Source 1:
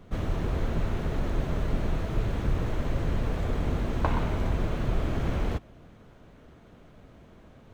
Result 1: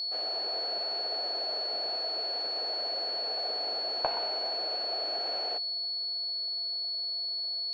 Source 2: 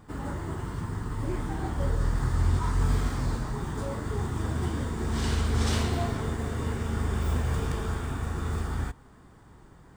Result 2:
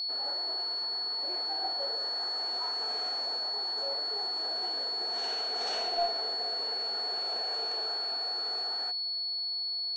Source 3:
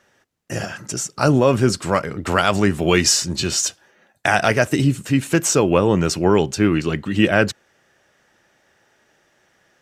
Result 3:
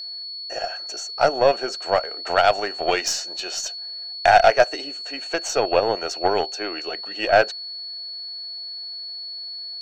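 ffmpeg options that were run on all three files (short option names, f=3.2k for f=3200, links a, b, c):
-af "highpass=f=470:w=0.5412,highpass=f=470:w=1.3066,equalizer=f=710:t=q:w=4:g=10,equalizer=f=1.1k:t=q:w=4:g=-8,equalizer=f=2.1k:t=q:w=4:g=-5,equalizer=f=3.4k:t=q:w=4:g=-5,equalizer=f=4.9k:t=q:w=4:g=-6,lowpass=f=6k:w=0.5412,lowpass=f=6k:w=1.3066,aeval=exprs='0.841*(cos(1*acos(clip(val(0)/0.841,-1,1)))-cos(1*PI/2))+0.0376*(cos(6*acos(clip(val(0)/0.841,-1,1)))-cos(6*PI/2))+0.0376*(cos(7*acos(clip(val(0)/0.841,-1,1)))-cos(7*PI/2))+0.00596*(cos(8*acos(clip(val(0)/0.841,-1,1)))-cos(8*PI/2))':c=same,aeval=exprs='val(0)+0.0282*sin(2*PI*4400*n/s)':c=same"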